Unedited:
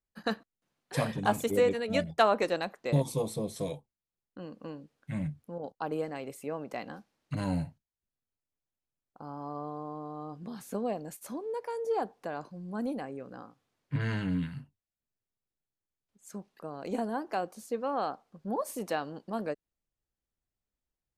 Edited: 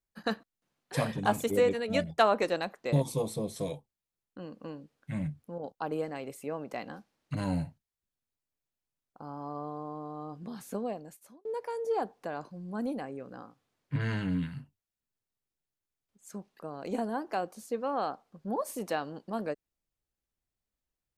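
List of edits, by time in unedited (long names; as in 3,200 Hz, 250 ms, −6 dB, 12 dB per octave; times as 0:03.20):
0:10.69–0:11.45: fade out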